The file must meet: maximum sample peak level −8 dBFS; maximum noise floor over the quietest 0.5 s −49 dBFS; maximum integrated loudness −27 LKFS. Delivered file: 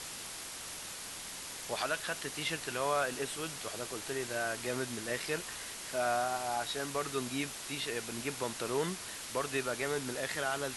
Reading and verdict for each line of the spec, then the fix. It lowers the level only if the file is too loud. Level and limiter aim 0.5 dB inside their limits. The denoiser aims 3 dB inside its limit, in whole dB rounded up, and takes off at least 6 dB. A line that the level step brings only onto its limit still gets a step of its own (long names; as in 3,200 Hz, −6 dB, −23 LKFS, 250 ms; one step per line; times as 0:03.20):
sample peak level −19.0 dBFS: in spec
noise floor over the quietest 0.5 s −44 dBFS: out of spec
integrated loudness −36.0 LKFS: in spec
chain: broadband denoise 8 dB, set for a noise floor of −44 dBFS